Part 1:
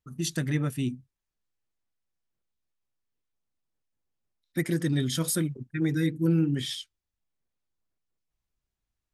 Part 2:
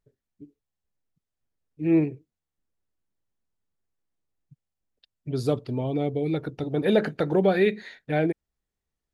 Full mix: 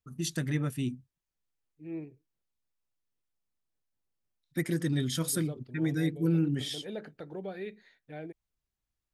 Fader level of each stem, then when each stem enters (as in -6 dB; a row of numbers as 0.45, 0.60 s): -3.0, -18.5 dB; 0.00, 0.00 s